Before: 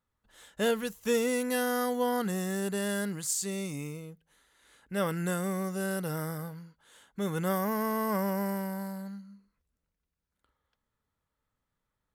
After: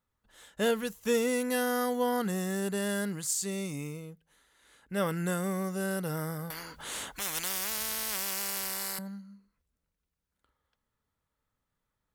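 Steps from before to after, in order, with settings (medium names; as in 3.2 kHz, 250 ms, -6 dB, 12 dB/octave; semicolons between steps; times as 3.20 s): 6.50–8.99 s: spectrum-flattening compressor 10:1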